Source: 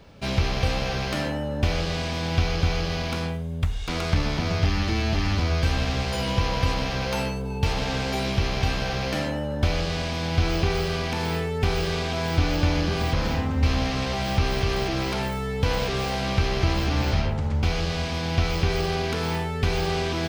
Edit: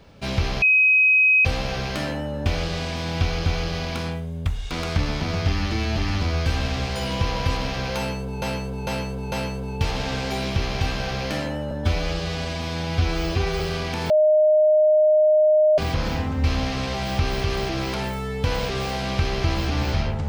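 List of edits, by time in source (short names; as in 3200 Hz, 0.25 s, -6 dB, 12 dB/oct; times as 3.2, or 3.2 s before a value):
0.62 add tone 2530 Hz -13 dBFS 0.83 s
7.14–7.59 loop, 4 plays
9.53–10.79 stretch 1.5×
11.29–12.97 bleep 615 Hz -13 dBFS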